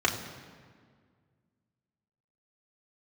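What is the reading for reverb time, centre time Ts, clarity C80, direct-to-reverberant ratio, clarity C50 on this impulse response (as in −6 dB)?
1.8 s, 30 ms, 9.5 dB, −2.0 dB, 8.0 dB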